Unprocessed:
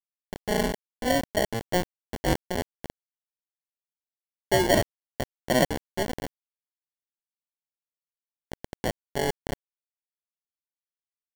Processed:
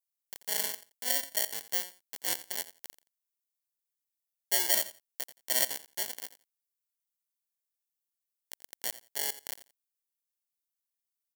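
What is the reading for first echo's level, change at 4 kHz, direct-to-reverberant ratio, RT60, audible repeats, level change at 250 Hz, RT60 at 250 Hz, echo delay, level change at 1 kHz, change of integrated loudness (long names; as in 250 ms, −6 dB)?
−16.0 dB, −1.0 dB, no reverb audible, no reverb audible, 2, −23.5 dB, no reverb audible, 86 ms, −14.0 dB, −3.0 dB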